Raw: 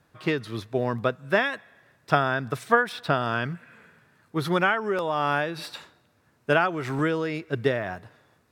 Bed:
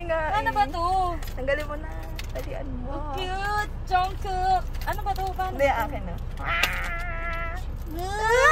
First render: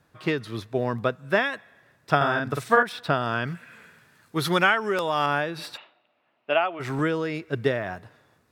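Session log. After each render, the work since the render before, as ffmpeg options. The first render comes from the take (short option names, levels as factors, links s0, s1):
-filter_complex "[0:a]asettb=1/sr,asplit=3[s0][s1][s2];[s0]atrim=end=2.164[s3];[s1]atrim=start=2.16:end=2.83,asetpts=PTS-STARTPTS,afade=t=in:d=0.004:c=qsin,afade=t=out:st=0.666:d=0.004:c=qsin,asplit=2[s4][s5];[s5]adelay=49,volume=0.708[s6];[s4][s6]amix=inputs=2:normalize=0,atrim=end_sample=29547[s7];[s2]atrim=start=2.826[s8];[s3][s7]acrossfade=d=0.004:c1=hsin:c2=qsin[s9];[s9][s8]acrossfade=d=0.004:c1=qsin:c2=hsin,asettb=1/sr,asplit=3[s10][s11][s12];[s10]atrim=end=3.474[s13];[s11]atrim=start=3.47:end=5.26,asetpts=PTS-STARTPTS,afade=t=in:d=0.004:c=qsin,afade=t=out:st=1.786:d=0.004:c=qsin,highshelf=f=2100:g=9[s14];[s12]atrim=start=5.256[s15];[s13][s14]acrossfade=d=0.004:c1=hsin:c2=qsin[s16];[s16][s15]acrossfade=d=0.004:c1=qsin:c2=hsin,asplit=3[s17][s18][s19];[s17]afade=t=out:st=5.76:d=0.02[s20];[s18]highpass=440,equalizer=f=450:t=q:w=4:g=-8,equalizer=f=660:t=q:w=4:g=5,equalizer=f=1000:t=q:w=4:g=-3,equalizer=f=1600:t=q:w=4:g=-9,equalizer=f=2800:t=q:w=4:g=6,lowpass=f=3300:w=0.5412,lowpass=f=3300:w=1.3066,afade=t=in:st=5.76:d=0.02,afade=t=out:st=6.79:d=0.02[s21];[s19]afade=t=in:st=6.79:d=0.02[s22];[s20][s21][s22]amix=inputs=3:normalize=0"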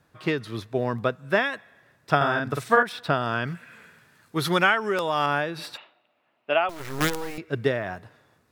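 -filter_complex "[0:a]asettb=1/sr,asplit=3[s0][s1][s2];[s0]atrim=end=6.694[s3];[s1]atrim=start=6.69:end=7.38,asetpts=PTS-STARTPTS,afade=t=in:d=0.004:c=qsin,afade=t=out:st=0.686:d=0.004:c=qsin,acrusher=bits=4:dc=4:mix=0:aa=0.000001[s4];[s2]atrim=start=7.376[s5];[s3][s4]acrossfade=d=0.004:c1=hsin:c2=qsin[s6];[s6][s5]acrossfade=d=0.004:c1=qsin:c2=hsin"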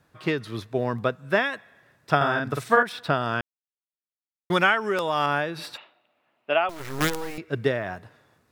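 -filter_complex "[0:a]asplit=3[s0][s1][s2];[s0]atrim=end=3.41,asetpts=PTS-STARTPTS,afade=t=out:st=3.406:d=0.004:c=hsin[s3];[s1]atrim=start=3.41:end=4.5,asetpts=PTS-STARTPTS,volume=0[s4];[s2]atrim=start=4.5,asetpts=PTS-STARTPTS,afade=t=in:d=0.004:c=hsin[s5];[s3][s4][s5]concat=n=3:v=0:a=1"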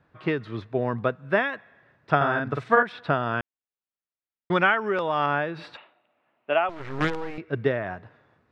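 -af "lowpass=2600"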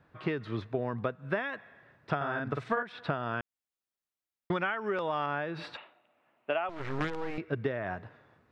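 -af "acompressor=threshold=0.0398:ratio=6"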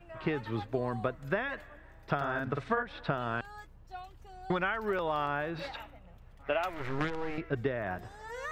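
-filter_complex "[1:a]volume=0.0794[s0];[0:a][s0]amix=inputs=2:normalize=0"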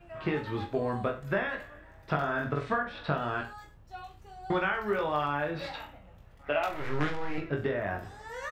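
-af "aecho=1:1:20|42|66.2|92.82|122.1:0.631|0.398|0.251|0.158|0.1"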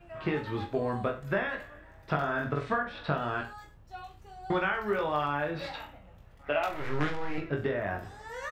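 -af anull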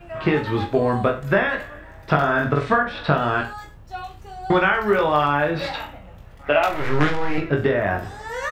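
-af "volume=3.55"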